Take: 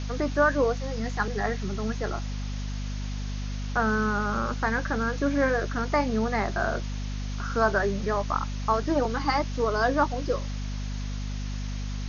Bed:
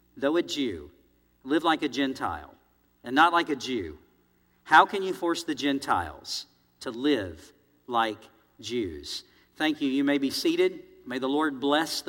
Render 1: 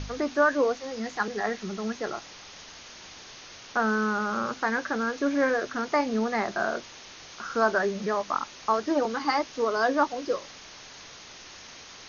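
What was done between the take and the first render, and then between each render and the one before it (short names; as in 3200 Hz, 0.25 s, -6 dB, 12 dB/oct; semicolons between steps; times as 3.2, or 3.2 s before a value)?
de-hum 50 Hz, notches 5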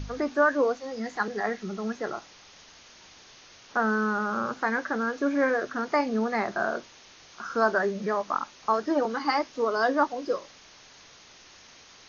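noise print and reduce 6 dB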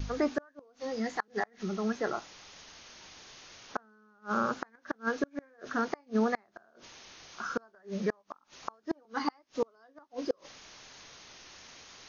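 vibrato 0.95 Hz 13 cents; flipped gate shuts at -17 dBFS, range -36 dB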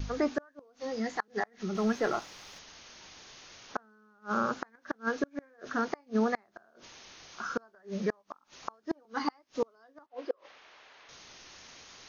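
1.75–2.59 sample leveller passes 1; 10.06–11.09 three-band isolator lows -18 dB, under 380 Hz, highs -20 dB, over 3400 Hz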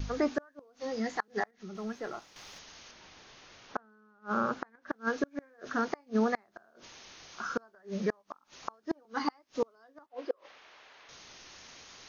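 1.51–2.36 gain -9.5 dB; 2.91–4.92 LPF 3000 Hz 6 dB/oct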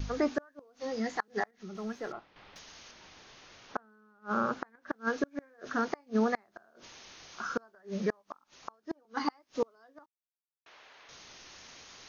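2.12–2.56 air absorption 370 m; 8.44–9.17 gain -4.5 dB; 10.06–10.66 mute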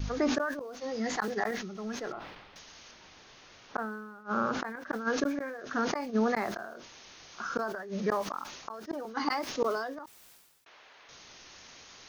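sustainer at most 44 dB/s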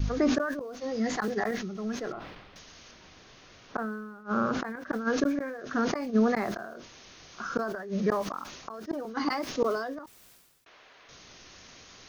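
low shelf 390 Hz +6.5 dB; notch 870 Hz, Q 12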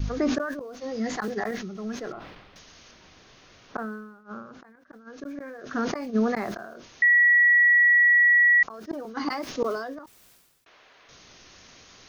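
3.95–5.67 dip -17 dB, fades 0.49 s linear; 7.02–8.63 bleep 1930 Hz -14.5 dBFS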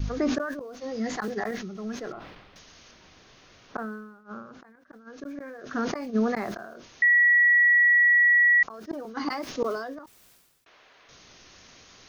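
gain -1 dB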